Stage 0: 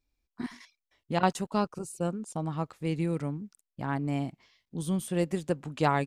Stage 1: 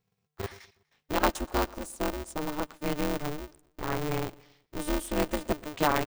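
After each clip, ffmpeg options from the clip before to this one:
-af "aecho=1:1:122|244|366:0.0708|0.0326|0.015,aeval=exprs='val(0)*sgn(sin(2*PI*150*n/s))':c=same"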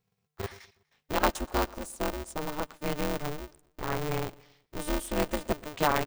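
-af "equalizer=f=310:w=7.4:g=-5.5"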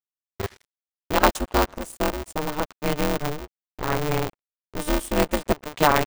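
-af "anlmdn=0.00398,aeval=exprs='sgn(val(0))*max(abs(val(0))-0.00501,0)':c=same,volume=8dB"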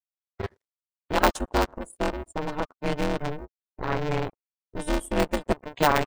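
-af "bandreject=f=1.2k:w=22,afftdn=nr=26:nf=-40,volume=-2.5dB"

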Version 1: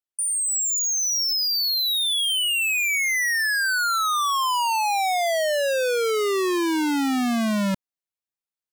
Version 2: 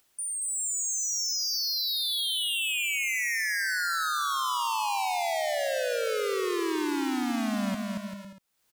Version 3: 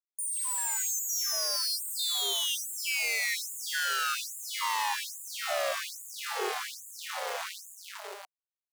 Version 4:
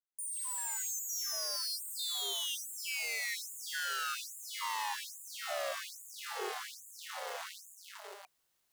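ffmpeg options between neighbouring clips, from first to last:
-filter_complex "[0:a]acompressor=mode=upward:threshold=-34dB:ratio=2.5,asplit=2[a][b];[b]aecho=0:1:230|391|503.7|582.6|637.8:0.631|0.398|0.251|0.158|0.1[c];[a][c]amix=inputs=2:normalize=0,volume=-8.5dB"
-af "acrusher=bits=4:dc=4:mix=0:aa=0.000001,afftfilt=real='re*gte(b*sr/1024,360*pow(6800/360,0.5+0.5*sin(2*PI*1.2*pts/sr)))':imag='im*gte(b*sr/1024,360*pow(6800/360,0.5+0.5*sin(2*PI*1.2*pts/sr)))':win_size=1024:overlap=0.75,volume=4dB"
-af "bandreject=f=2.4k:w=20,areverse,acompressor=mode=upward:threshold=-50dB:ratio=2.5,areverse,volume=-6.5dB"

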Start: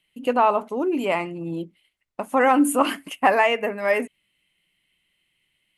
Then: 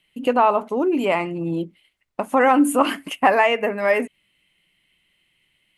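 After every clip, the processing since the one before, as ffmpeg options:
-filter_complex "[0:a]highshelf=f=5.3k:g=-4.5,asplit=2[a][b];[b]acompressor=threshold=-27dB:ratio=6,volume=-0.5dB[c];[a][c]amix=inputs=2:normalize=0"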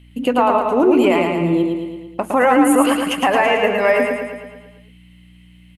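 -filter_complex "[0:a]alimiter=limit=-13.5dB:level=0:latency=1:release=270,aeval=exprs='val(0)+0.00282*(sin(2*PI*60*n/s)+sin(2*PI*2*60*n/s)/2+sin(2*PI*3*60*n/s)/3+sin(2*PI*4*60*n/s)/4+sin(2*PI*5*60*n/s)/5)':c=same,asplit=2[a][b];[b]aecho=0:1:111|222|333|444|555|666|777|888:0.631|0.36|0.205|0.117|0.0666|0.038|0.0216|0.0123[c];[a][c]amix=inputs=2:normalize=0,volume=6.5dB"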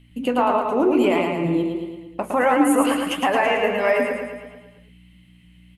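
-af "flanger=delay=7:depth=10:regen=-59:speed=1.5:shape=sinusoidal"

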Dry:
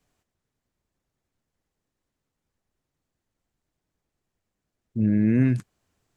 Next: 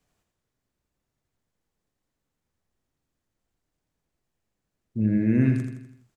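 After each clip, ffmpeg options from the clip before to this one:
-af "aecho=1:1:83|166|249|332|415|498:0.501|0.256|0.13|0.0665|0.0339|0.0173,volume=-1.5dB"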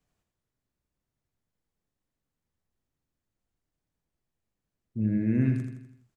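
-af "bass=f=250:g=3,treble=f=4k:g=-1,volume=-6dB"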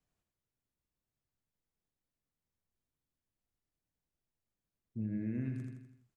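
-af "acompressor=threshold=-26dB:ratio=6,volume=-7dB"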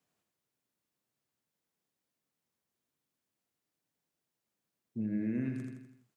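-af "highpass=180,volume=5.5dB"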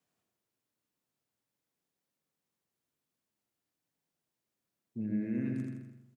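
-filter_complex "[0:a]asplit=2[a][b];[b]adelay=129,lowpass=f=860:p=1,volume=-3.5dB,asplit=2[c][d];[d]adelay=129,lowpass=f=860:p=1,volume=0.41,asplit=2[e][f];[f]adelay=129,lowpass=f=860:p=1,volume=0.41,asplit=2[g][h];[h]adelay=129,lowpass=f=860:p=1,volume=0.41,asplit=2[i][j];[j]adelay=129,lowpass=f=860:p=1,volume=0.41[k];[a][c][e][g][i][k]amix=inputs=6:normalize=0,volume=-1.5dB"

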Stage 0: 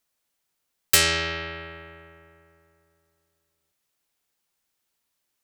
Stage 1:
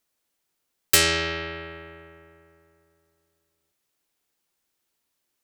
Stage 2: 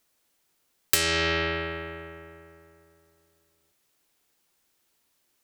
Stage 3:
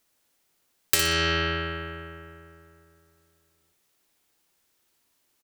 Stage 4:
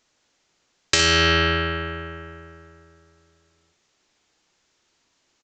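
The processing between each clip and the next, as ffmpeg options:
-af "equalizer=f=340:w=1.4:g=4.5"
-af "acompressor=threshold=-26dB:ratio=8,volume=6dB"
-af "aecho=1:1:60|120|180:0.422|0.118|0.0331"
-af "aresample=16000,aresample=44100,volume=6.5dB"

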